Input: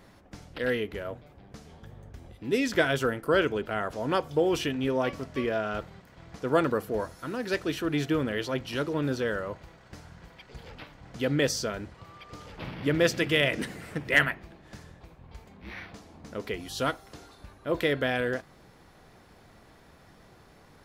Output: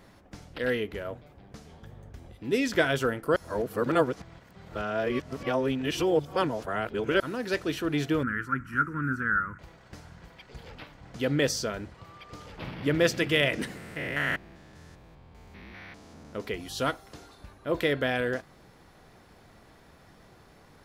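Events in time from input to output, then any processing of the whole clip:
3.36–7.20 s: reverse
8.23–9.59 s: FFT filter 260 Hz 0 dB, 690 Hz -29 dB, 1.4 kHz +14 dB, 3.6 kHz -28 dB, 8.1 kHz -8 dB
13.77–16.35 s: spectrogram pixelated in time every 200 ms

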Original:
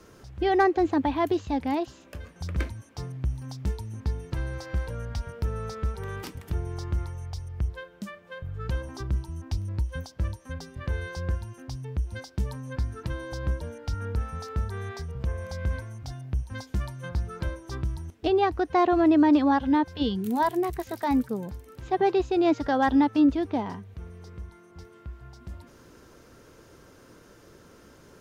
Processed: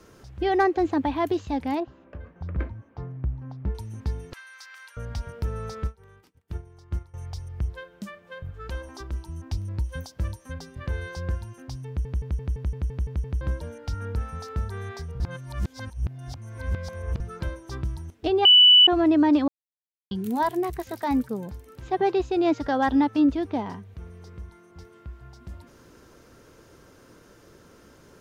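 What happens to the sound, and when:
1.80–3.75 s: low-pass 1.5 kHz
4.33–4.97 s: high-pass 1.3 kHz 24 dB/octave
5.87–7.14 s: upward expansion 2.5:1, over -44 dBFS
8.51–9.26 s: peaking EQ 130 Hz -14 dB 1.3 oct
9.84–10.51 s: treble shelf 7.2 kHz +6.5 dB
11.88 s: stutter in place 0.17 s, 9 plays
15.20–17.20 s: reverse
18.45–18.87 s: bleep 2.97 kHz -10 dBFS
19.48–20.11 s: mute

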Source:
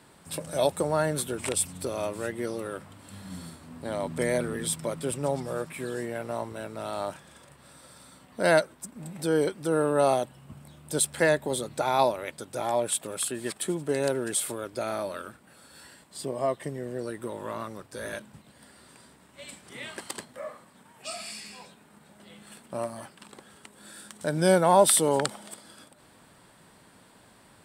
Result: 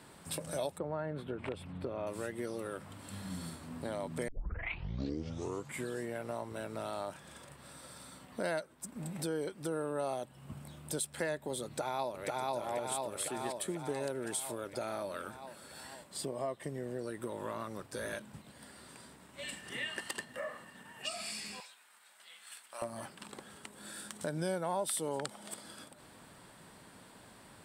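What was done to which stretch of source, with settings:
0.78–2.07 s: distance through air 470 m
4.28 s: tape start 1.59 s
11.65–12.50 s: echo throw 490 ms, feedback 60%, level 0 dB
19.43–21.09 s: small resonant body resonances 1.8/2.8 kHz, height 18 dB
21.60–22.82 s: high-pass 1.4 kHz
whole clip: compression 3:1, threshold -37 dBFS

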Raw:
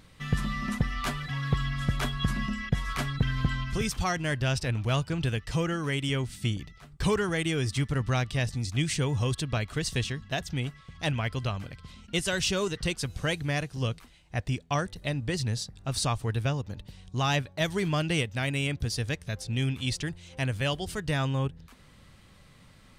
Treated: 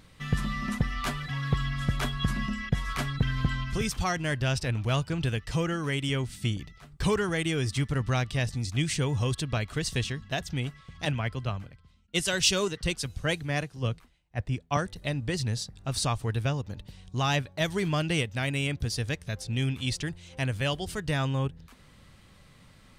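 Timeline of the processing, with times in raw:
11.05–14.77 s: three bands expanded up and down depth 100%

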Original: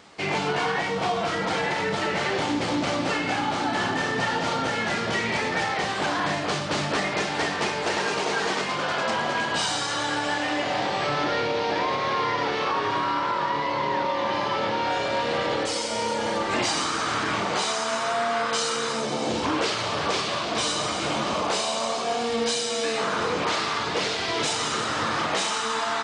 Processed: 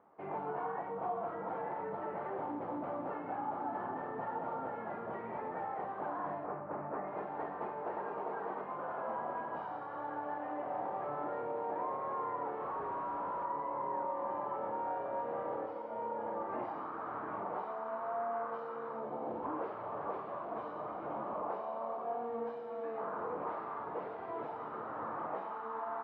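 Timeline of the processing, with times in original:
6.46–7.08 s: Butterworth band-stop 4.2 kHz, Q 0.86
12.62–13.45 s: Schmitt trigger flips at -37.5 dBFS
whole clip: low-pass 1 kHz 24 dB/octave; tilt EQ +4 dB/octave; trim -8 dB

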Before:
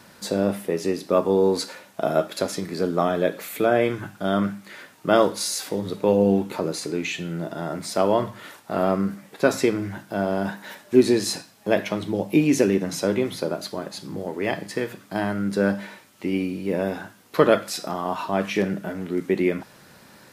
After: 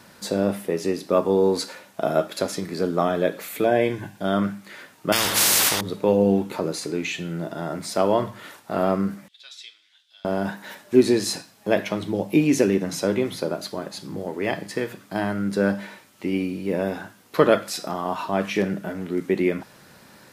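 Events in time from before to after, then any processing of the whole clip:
3.64–4.22 s: Butterworth band-stop 1.3 kHz, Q 3.2
5.12–5.81 s: spectrum-flattening compressor 10:1
9.28–10.25 s: ladder band-pass 3.7 kHz, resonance 75%

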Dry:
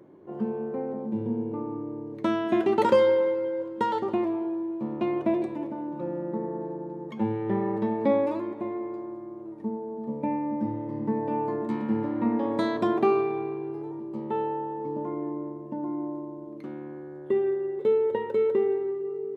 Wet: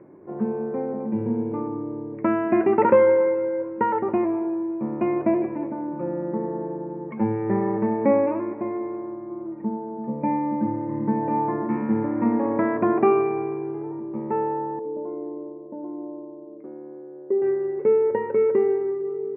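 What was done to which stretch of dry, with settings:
1.00–1.68 s: treble shelf 2 kHz +9 dB
9.29–11.77 s: comb 5.8 ms, depth 49%
14.79–17.42 s: band-pass filter 470 Hz, Q 2
whole clip: steep low-pass 2.5 kHz 72 dB/octave; trim +4 dB

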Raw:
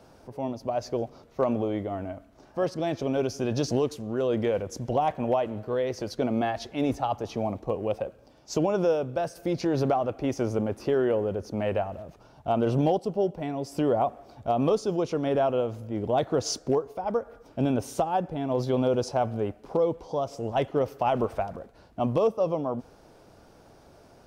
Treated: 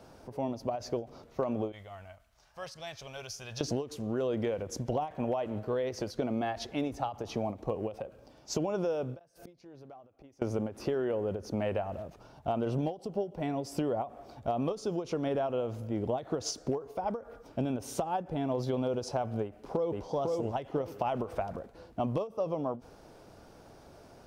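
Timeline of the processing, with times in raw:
1.72–3.61 s: amplifier tone stack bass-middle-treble 10-0-10
9.19–10.42 s: inverted gate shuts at -30 dBFS, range -26 dB
19.42–20.01 s: echo throw 500 ms, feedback 35%, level -4 dB
whole clip: compression, threshold -28 dBFS; endings held to a fixed fall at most 200 dB/s

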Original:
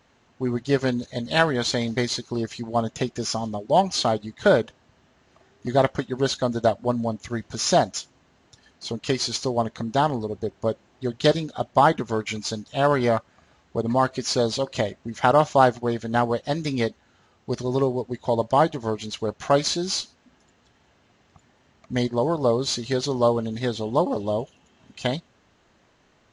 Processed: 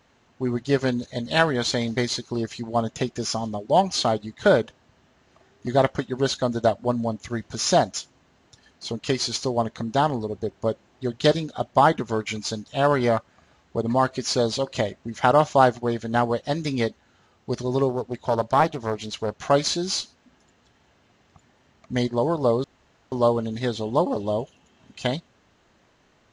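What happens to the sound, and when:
17.89–19.44 s: loudspeaker Doppler distortion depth 0.43 ms
22.64–23.12 s: room tone

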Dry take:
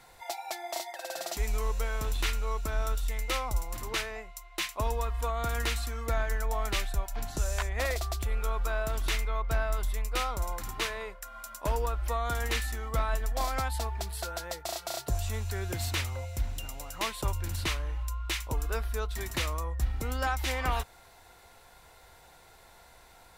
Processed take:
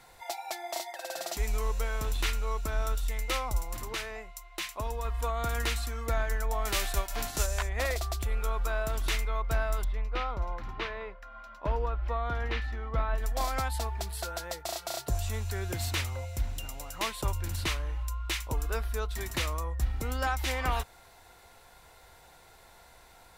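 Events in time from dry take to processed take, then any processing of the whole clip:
3.84–5.05 s: compression 1.5:1, threshold -36 dBFS
6.65–7.45 s: formants flattened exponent 0.6
9.84–13.18 s: distance through air 280 m

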